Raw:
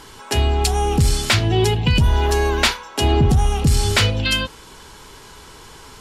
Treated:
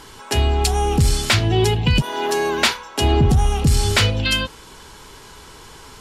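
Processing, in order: 2.00–2.74 s: high-pass 340 Hz -> 85 Hz 24 dB/octave

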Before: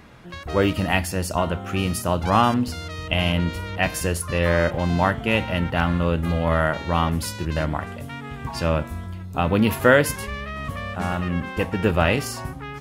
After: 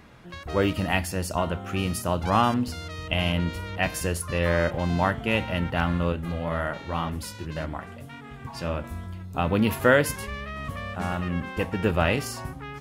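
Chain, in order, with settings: 6.12–8.84 s: flange 1.9 Hz, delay 2.3 ms, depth 6.8 ms, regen -44%; trim -3.5 dB

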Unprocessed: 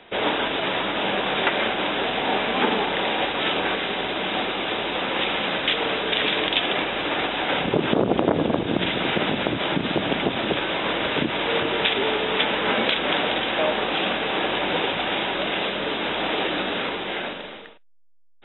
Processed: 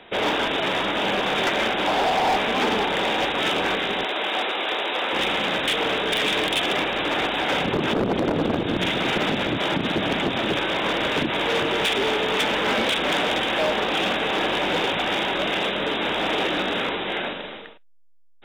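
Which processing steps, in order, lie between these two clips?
1.87–2.36 s: peaking EQ 770 Hz +10 dB 0.77 oct; 4.04–5.13 s: high-pass 400 Hz 12 dB/octave; hard clipper -19 dBFS, distortion -12 dB; trim +1.5 dB

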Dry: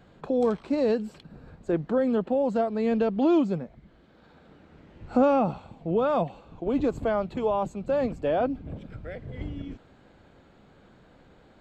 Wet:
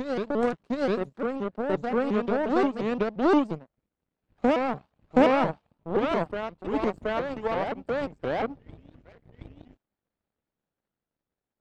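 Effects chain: power-law waveshaper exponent 2; reverse echo 723 ms -3.5 dB; vibrato with a chosen wave saw up 5.7 Hz, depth 250 cents; trim +5 dB

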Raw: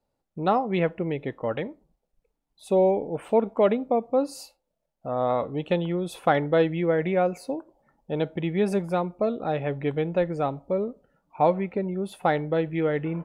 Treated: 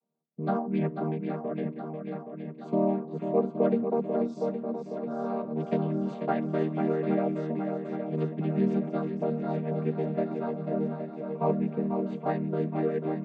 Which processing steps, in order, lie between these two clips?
vocoder on a held chord major triad, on D#3; shuffle delay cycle 820 ms, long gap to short 1.5:1, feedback 57%, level -7 dB; trim -3.5 dB

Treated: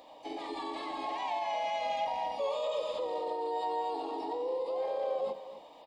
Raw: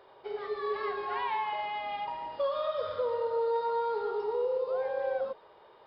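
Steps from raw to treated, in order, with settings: high-pass 42 Hz 6 dB/octave; treble shelf 2.5 kHz +5.5 dB; hum notches 50/100/150/200/250/300 Hz; peak limiter -29.5 dBFS, peak gain reduction 9 dB; harmony voices -7 st -16 dB, -4 st -5 dB, +12 st -16 dB; static phaser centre 390 Hz, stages 6; on a send: delay 258 ms -13 dB; on the sum: trim +4.5 dB

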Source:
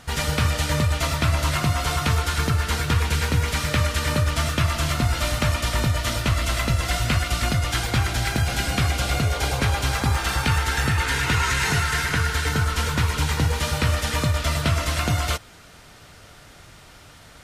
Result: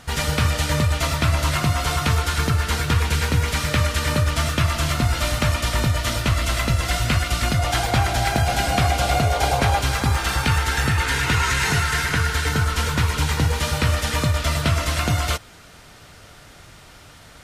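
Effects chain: 7.59–9.80 s: peaking EQ 720 Hz +10 dB 0.6 oct; trim +1.5 dB

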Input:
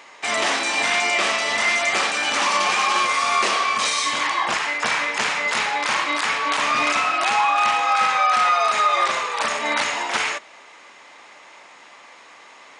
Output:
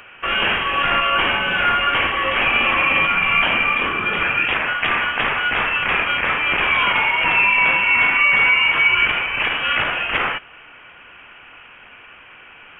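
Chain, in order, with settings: frequency inversion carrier 3.5 kHz; short-mantissa float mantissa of 6-bit; trim +3 dB

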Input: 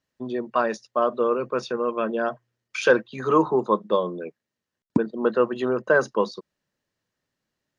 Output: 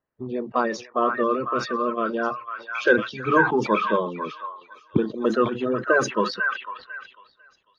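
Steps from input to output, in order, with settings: coarse spectral quantiser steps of 30 dB; on a send: repeats whose band climbs or falls 498 ms, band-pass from 1.6 kHz, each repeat 0.7 oct, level -1 dB; on the sum: level-controlled noise filter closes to 1.4 kHz, open at -15.5 dBFS; decay stretcher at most 130 dB/s

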